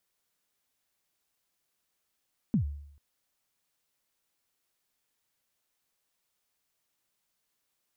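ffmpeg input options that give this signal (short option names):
-f lavfi -i "aevalsrc='0.1*pow(10,-3*t/0.71)*sin(2*PI*(250*0.102/log(72/250)*(exp(log(72/250)*min(t,0.102)/0.102)-1)+72*max(t-0.102,0)))':d=0.44:s=44100"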